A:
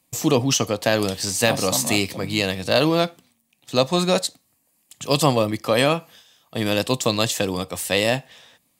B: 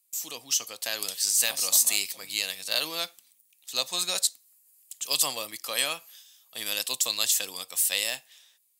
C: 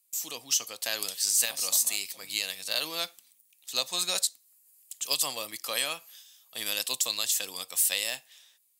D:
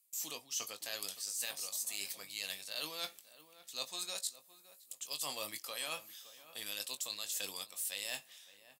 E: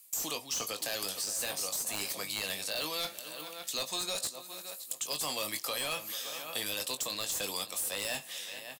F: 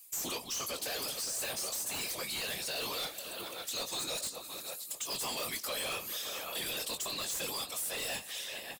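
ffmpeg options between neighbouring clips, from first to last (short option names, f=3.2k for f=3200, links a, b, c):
-af "aderivative,dynaudnorm=f=130:g=11:m=8dB,volume=-4dB"
-af "alimiter=limit=-12.5dB:level=0:latency=1:release=419"
-filter_complex "[0:a]areverse,acompressor=threshold=-35dB:ratio=6,areverse,asplit=2[a][b];[b]adelay=20,volume=-9dB[c];[a][c]amix=inputs=2:normalize=0,asplit=2[d][e];[e]adelay=565,lowpass=f=1.7k:p=1,volume=-15dB,asplit=2[f][g];[g]adelay=565,lowpass=f=1.7k:p=1,volume=0.33,asplit=2[h][i];[i]adelay=565,lowpass=f=1.7k:p=1,volume=0.33[j];[d][f][h][j]amix=inputs=4:normalize=0,volume=-2.5dB"
-filter_complex "[0:a]asplit=2[a][b];[b]adelay=431.5,volume=-19dB,highshelf=f=4k:g=-9.71[c];[a][c]amix=inputs=2:normalize=0,aeval=exprs='0.0841*sin(PI/2*3.16*val(0)/0.0841)':c=same,acrossover=split=440|1200[d][e][f];[d]acompressor=threshold=-47dB:ratio=4[g];[e]acompressor=threshold=-44dB:ratio=4[h];[f]acompressor=threshold=-36dB:ratio=4[i];[g][h][i]amix=inputs=3:normalize=0,volume=2dB"
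-af "afftfilt=real='hypot(re,im)*cos(2*PI*random(0))':imag='hypot(re,im)*sin(2*PI*random(1))':win_size=512:overlap=0.75,asoftclip=type=tanh:threshold=-40dB,volume=8dB"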